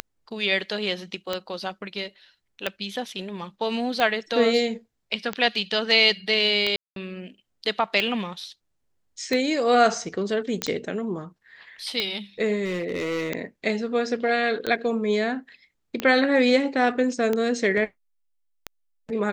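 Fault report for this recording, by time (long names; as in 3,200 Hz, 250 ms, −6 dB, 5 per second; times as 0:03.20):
scratch tick 45 rpm −11 dBFS
0:06.76–0:06.96: drop-out 202 ms
0:10.62: click −9 dBFS
0:12.64–0:13.31: clipping −23 dBFS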